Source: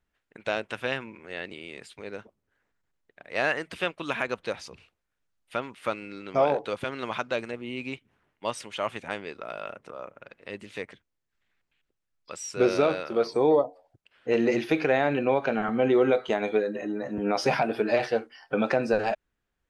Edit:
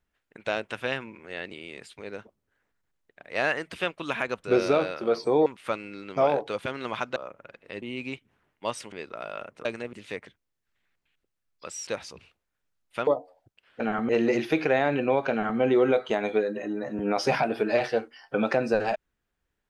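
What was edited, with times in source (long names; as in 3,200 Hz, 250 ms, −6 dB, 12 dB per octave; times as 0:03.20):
0:04.44–0:05.64: swap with 0:12.53–0:13.55
0:07.34–0:07.62: swap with 0:09.93–0:10.59
0:08.72–0:09.20: remove
0:15.50–0:15.79: duplicate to 0:14.28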